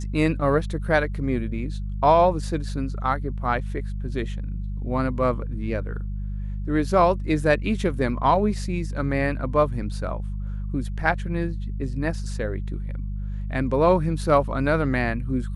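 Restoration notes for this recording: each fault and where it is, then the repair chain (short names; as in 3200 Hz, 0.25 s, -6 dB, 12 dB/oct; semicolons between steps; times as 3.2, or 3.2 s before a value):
hum 50 Hz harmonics 4 -29 dBFS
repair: de-hum 50 Hz, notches 4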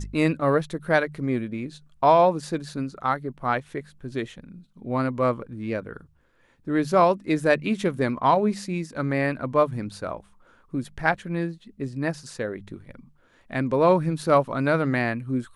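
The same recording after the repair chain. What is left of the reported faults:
none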